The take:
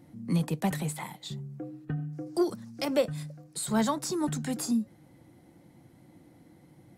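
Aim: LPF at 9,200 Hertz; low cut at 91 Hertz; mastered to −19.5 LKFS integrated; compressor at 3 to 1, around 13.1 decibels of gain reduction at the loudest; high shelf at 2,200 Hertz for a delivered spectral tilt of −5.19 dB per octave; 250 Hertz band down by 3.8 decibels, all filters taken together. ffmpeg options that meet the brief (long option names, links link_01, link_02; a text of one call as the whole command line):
ffmpeg -i in.wav -af "highpass=91,lowpass=9200,equalizer=frequency=250:width_type=o:gain=-5,highshelf=frequency=2200:gain=-5,acompressor=threshold=-40dB:ratio=3,volume=23dB" out.wav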